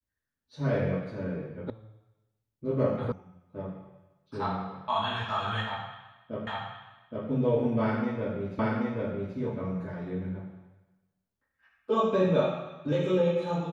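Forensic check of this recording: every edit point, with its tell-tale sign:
0:01.70: cut off before it has died away
0:03.12: cut off before it has died away
0:06.47: the same again, the last 0.82 s
0:08.59: the same again, the last 0.78 s

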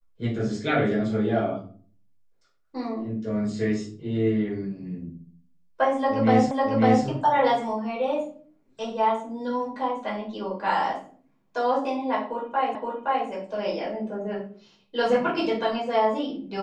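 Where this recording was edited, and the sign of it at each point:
0:06.51: the same again, the last 0.55 s
0:12.75: the same again, the last 0.52 s

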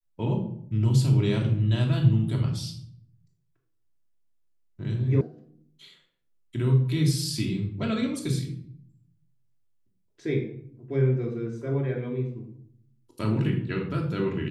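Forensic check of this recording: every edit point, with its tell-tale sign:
0:05.21: cut off before it has died away

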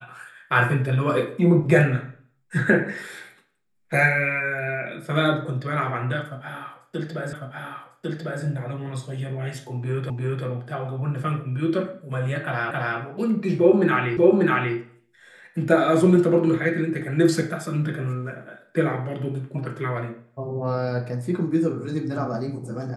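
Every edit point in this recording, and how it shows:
0:07.33: the same again, the last 1.1 s
0:10.10: the same again, the last 0.35 s
0:12.71: the same again, the last 0.27 s
0:14.17: the same again, the last 0.59 s

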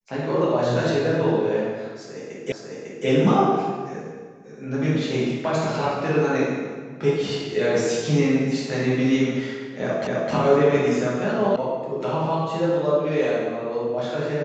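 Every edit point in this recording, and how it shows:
0:02.52: the same again, the last 0.55 s
0:10.07: the same again, the last 0.26 s
0:11.56: cut off before it has died away

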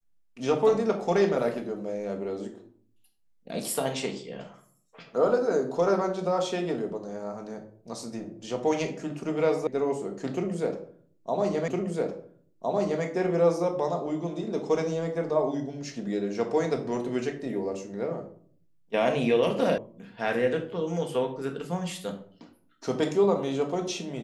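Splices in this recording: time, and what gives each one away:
0:09.67: cut off before it has died away
0:11.68: the same again, the last 1.36 s
0:19.78: cut off before it has died away

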